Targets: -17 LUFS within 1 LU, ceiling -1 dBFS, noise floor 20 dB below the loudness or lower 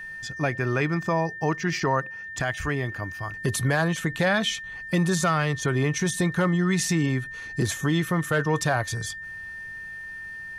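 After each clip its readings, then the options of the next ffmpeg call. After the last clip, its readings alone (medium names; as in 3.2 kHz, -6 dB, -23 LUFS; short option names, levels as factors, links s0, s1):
steady tone 1.8 kHz; tone level -35 dBFS; loudness -25.5 LUFS; peak level -11.0 dBFS; loudness target -17.0 LUFS
-> -af "bandreject=f=1800:w=30"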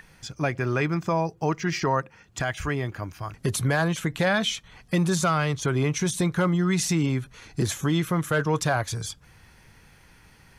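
steady tone not found; loudness -26.0 LUFS; peak level -11.0 dBFS; loudness target -17.0 LUFS
-> -af "volume=2.82"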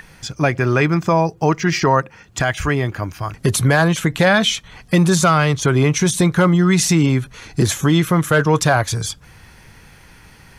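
loudness -17.0 LUFS; peak level -2.0 dBFS; noise floor -46 dBFS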